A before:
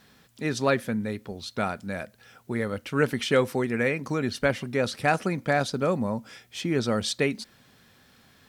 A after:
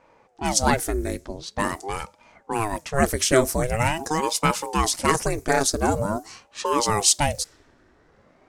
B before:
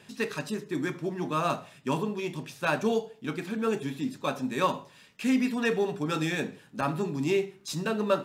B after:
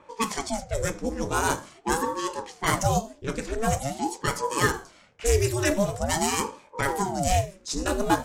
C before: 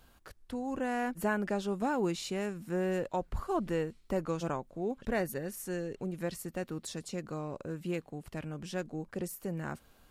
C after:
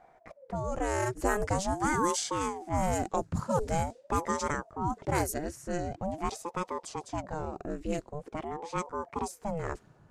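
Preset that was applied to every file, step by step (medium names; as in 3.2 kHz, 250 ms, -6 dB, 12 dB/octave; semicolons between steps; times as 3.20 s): level-controlled noise filter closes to 1.3 kHz, open at -25.5 dBFS; resonant high shelf 4.8 kHz +12.5 dB, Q 1.5; ring modulator with a swept carrier 430 Hz, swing 70%, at 0.45 Hz; trim +6 dB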